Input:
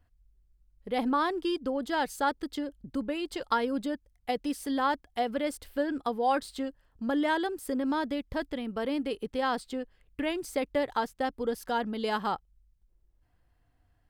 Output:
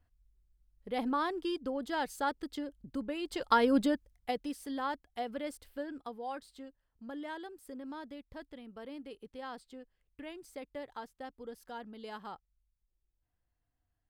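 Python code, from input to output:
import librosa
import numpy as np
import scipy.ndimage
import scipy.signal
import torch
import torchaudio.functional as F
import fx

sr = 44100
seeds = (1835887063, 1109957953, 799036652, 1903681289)

y = fx.gain(x, sr, db=fx.line((3.15, -5.0), (3.77, 5.0), (4.57, -8.0), (5.51, -8.0), (6.4, -14.5)))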